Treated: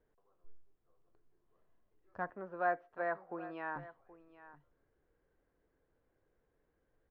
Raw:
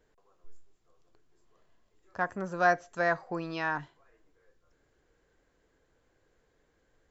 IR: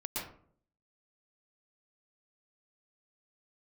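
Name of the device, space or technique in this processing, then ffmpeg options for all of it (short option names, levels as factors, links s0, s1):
phone in a pocket: -filter_complex "[0:a]asettb=1/sr,asplit=3[s0][s1][s2];[s0]atrim=end=2.304[s3];[s1]atrim=start=2.3:end=3.76,asetpts=PTS-STARTPTS,afade=t=in:d=0.004:c=qsin,afade=t=out:st=1.456:d=0.004:c=qsin,acrossover=split=250 3600:gain=0.158 1 0.0708[s4][s5][s6];[s4][s5][s6]amix=inputs=3:normalize=0[s7];[s2]atrim=start=3.756[s8];[s3][s7]acrossfade=d=0.004:c1=hsin:c2=qsin[s9];[s9][s8]acrossfade=d=0.004:c1=qsin:c2=hsin,lowpass=3600,highshelf=f=2300:g=-12,aecho=1:1:775:0.15,volume=0.473"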